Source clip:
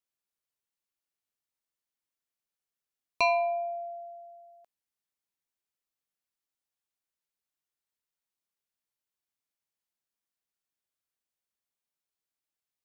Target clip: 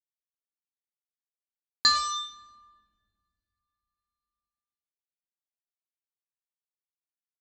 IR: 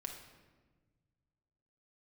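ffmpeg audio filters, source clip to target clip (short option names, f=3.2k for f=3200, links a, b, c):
-filter_complex "[0:a]dynaudnorm=f=560:g=11:m=7.5dB,asetrate=76440,aresample=44100,highshelf=f=5.9k:g=-4.5,aresample=16000,acrusher=bits=4:mix=0:aa=0.5,aresample=44100,equalizer=f=125:t=o:w=1:g=-5,equalizer=f=250:t=o:w=1:g=5,equalizer=f=500:t=o:w=1:g=-6,equalizer=f=1k:t=o:w=1:g=-7,equalizer=f=2k:t=o:w=1:g=-6,equalizer=f=4k:t=o:w=1:g=5,asplit=2[a][b];[1:a]atrim=start_sample=2205,asetrate=26460,aresample=44100[c];[b][c]afir=irnorm=-1:irlink=0,volume=-11dB[d];[a][d]amix=inputs=2:normalize=0"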